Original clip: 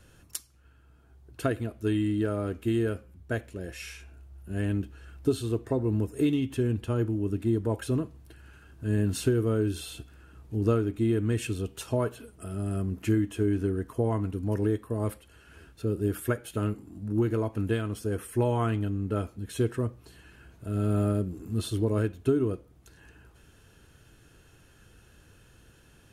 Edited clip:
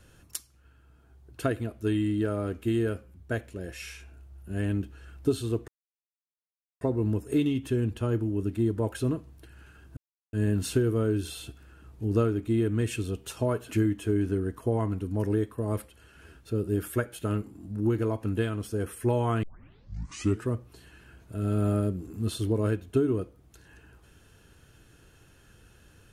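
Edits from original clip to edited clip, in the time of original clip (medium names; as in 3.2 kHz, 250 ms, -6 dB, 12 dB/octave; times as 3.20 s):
5.68 s: insert silence 1.13 s
8.84 s: insert silence 0.36 s
12.22–13.03 s: delete
18.75 s: tape start 1.03 s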